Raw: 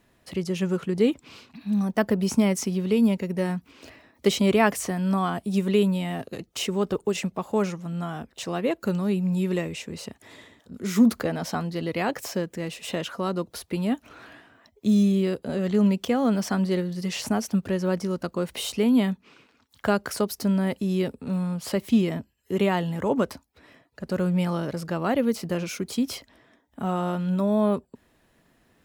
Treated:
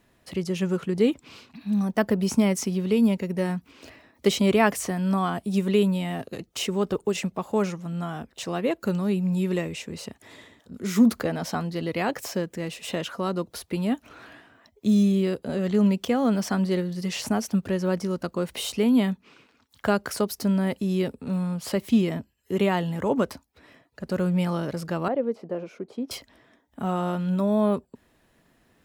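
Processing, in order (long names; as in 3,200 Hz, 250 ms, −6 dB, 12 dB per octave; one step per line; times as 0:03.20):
0:25.08–0:26.11: resonant band-pass 520 Hz, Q 1.2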